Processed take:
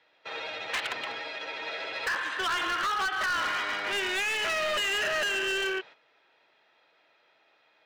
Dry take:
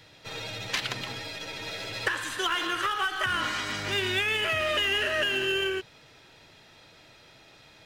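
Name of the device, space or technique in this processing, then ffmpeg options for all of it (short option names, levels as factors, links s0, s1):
walkie-talkie: -af "highpass=520,lowpass=2600,asoftclip=type=hard:threshold=0.0299,agate=range=0.251:threshold=0.00282:ratio=16:detection=peak,volume=1.68"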